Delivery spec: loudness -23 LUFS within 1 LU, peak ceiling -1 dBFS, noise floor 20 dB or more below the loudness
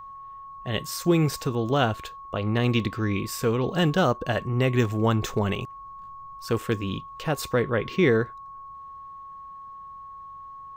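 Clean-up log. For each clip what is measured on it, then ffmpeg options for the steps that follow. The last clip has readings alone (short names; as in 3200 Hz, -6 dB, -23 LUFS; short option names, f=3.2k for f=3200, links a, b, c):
steady tone 1100 Hz; tone level -39 dBFS; loudness -25.5 LUFS; peak -10.0 dBFS; loudness target -23.0 LUFS
-> -af "bandreject=f=1.1k:w=30"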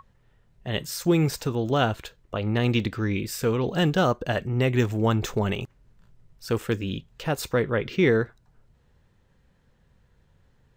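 steady tone none; loudness -25.5 LUFS; peak -10.0 dBFS; loudness target -23.0 LUFS
-> -af "volume=2.5dB"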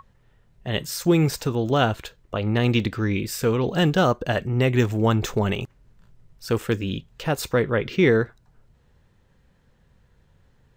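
loudness -23.0 LUFS; peak -7.5 dBFS; noise floor -61 dBFS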